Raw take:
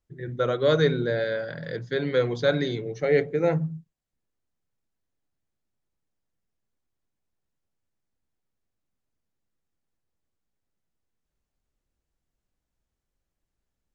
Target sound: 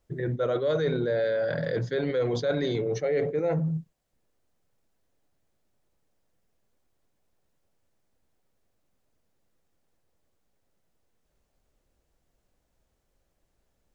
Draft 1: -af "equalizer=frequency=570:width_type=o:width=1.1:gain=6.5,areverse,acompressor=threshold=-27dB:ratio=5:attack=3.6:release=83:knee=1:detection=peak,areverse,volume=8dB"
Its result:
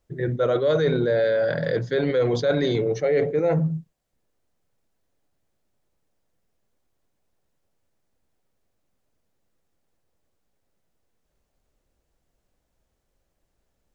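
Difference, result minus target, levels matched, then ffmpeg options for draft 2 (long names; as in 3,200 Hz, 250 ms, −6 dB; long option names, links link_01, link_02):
downward compressor: peak gain reduction −5 dB
-af "equalizer=frequency=570:width_type=o:width=1.1:gain=6.5,areverse,acompressor=threshold=-33.5dB:ratio=5:attack=3.6:release=83:knee=1:detection=peak,areverse,volume=8dB"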